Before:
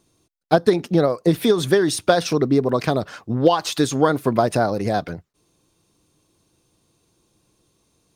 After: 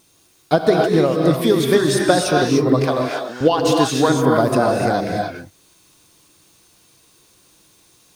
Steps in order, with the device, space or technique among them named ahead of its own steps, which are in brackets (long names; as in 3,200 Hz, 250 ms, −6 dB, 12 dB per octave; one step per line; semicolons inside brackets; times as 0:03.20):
noise-reduction cassette on a plain deck (one half of a high-frequency compander encoder only; tape wow and flutter; white noise bed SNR 42 dB)
0:02.81–0:03.41: Chebyshev high-pass filter 550 Hz, order 2
reverb whose tail is shaped and stops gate 320 ms rising, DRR −0.5 dB